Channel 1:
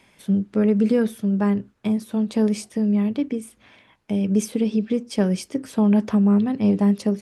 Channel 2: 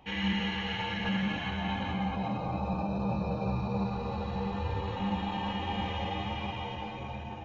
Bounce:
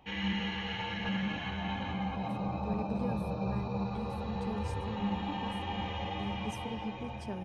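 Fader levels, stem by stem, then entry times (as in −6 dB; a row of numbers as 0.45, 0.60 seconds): −20.0, −3.0 decibels; 2.10, 0.00 seconds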